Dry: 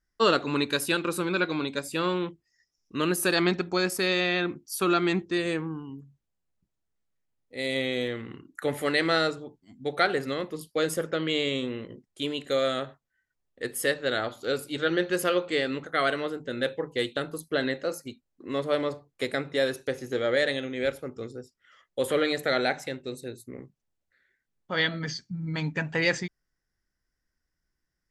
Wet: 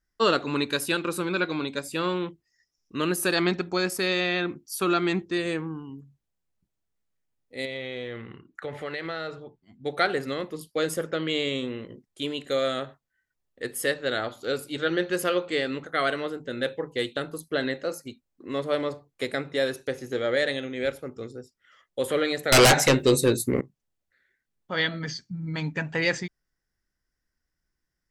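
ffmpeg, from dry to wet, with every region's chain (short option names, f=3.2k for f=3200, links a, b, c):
-filter_complex "[0:a]asettb=1/sr,asplit=3[a][b][c];[a]atrim=end=7.654[d];[b]atrim=start=7.65:end=9.84,asetpts=PTS-STARTPTS,afade=t=in:d=0.004:c=qsin,afade=t=out:st=2.186:d=0.004:c=qsin,lowpass=3.7k,equalizer=f=280:t=o:w=0.43:g=-7.5,acompressor=threshold=-30dB:ratio=4:attack=3.2:release=140:knee=1:detection=peak[e];[c]atrim=start=9.836[f];[d][e]acrossfade=d=0.004:c1=hsin:c2=qsin[g];[g][f]acrossfade=d=0.004:c1=qsin:c2=hsin,asettb=1/sr,asplit=3[h][i][j];[h]atrim=end=22.524[k];[i]atrim=start=22.52:end=23.61,asetpts=PTS-STARTPTS,afade=t=in:d=0.004:c=qsin,afade=t=out:st=1.086:d=0.004:c=qsin,aeval=exprs='0.237*sin(PI/2*5.01*val(0)/0.237)':c=same,highshelf=f=8.2k:g=3.5,asplit=2[l][m];[m]adelay=14,volume=-11dB[n];[l][n]amix=inputs=2:normalize=0,atrim=end_sample=48069[o];[j]atrim=start=23.606[p];[k][o]acrossfade=d=0.004:c1=hsin:c2=qsin[q];[q][p]acrossfade=d=0.004:c1=qsin:c2=hsin"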